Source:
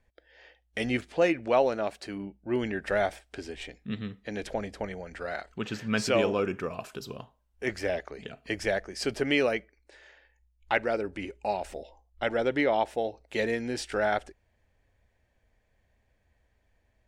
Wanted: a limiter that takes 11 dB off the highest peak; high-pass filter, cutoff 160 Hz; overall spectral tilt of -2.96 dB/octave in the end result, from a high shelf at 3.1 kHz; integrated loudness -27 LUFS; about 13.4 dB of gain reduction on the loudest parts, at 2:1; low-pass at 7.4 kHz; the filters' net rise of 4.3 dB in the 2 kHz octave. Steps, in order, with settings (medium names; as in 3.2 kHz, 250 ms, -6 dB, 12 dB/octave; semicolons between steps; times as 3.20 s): high-pass 160 Hz; low-pass 7.4 kHz; peaking EQ 2 kHz +7 dB; treble shelf 3.1 kHz -5.5 dB; compression 2:1, threshold -44 dBFS; trim +17 dB; peak limiter -14 dBFS